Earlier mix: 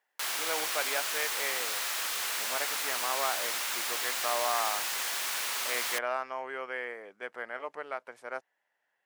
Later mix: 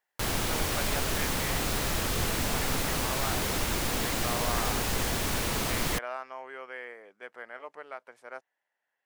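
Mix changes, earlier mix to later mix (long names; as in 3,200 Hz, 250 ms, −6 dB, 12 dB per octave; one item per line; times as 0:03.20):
speech −4.5 dB
background: remove high-pass filter 1,100 Hz 12 dB per octave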